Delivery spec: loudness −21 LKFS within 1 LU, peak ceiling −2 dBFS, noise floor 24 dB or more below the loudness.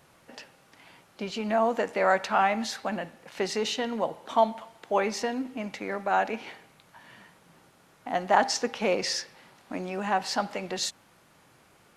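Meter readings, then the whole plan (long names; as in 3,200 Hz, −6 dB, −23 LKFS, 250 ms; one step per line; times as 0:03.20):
integrated loudness −28.5 LKFS; sample peak −8.5 dBFS; target loudness −21.0 LKFS
→ level +7.5 dB
brickwall limiter −2 dBFS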